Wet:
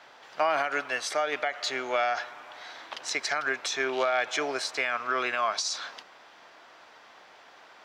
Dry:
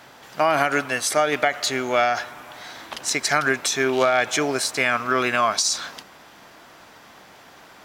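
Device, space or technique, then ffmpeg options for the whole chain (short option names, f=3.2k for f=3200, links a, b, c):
DJ mixer with the lows and highs turned down: -filter_complex "[0:a]acrossover=split=370 6100:gain=0.178 1 0.126[a][b][c];[a][b][c]amix=inputs=3:normalize=0,alimiter=limit=-11.5dB:level=0:latency=1:release=240,volume=-4.5dB"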